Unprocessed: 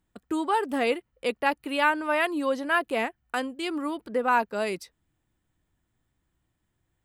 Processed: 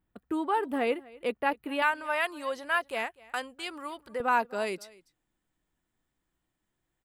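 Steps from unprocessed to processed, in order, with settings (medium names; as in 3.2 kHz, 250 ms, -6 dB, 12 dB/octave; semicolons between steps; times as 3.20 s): peaking EQ 6.2 kHz -12.5 dB 1.3 oct, from 1.82 s 290 Hz, from 4.20 s 85 Hz; delay 249 ms -22.5 dB; trim -2.5 dB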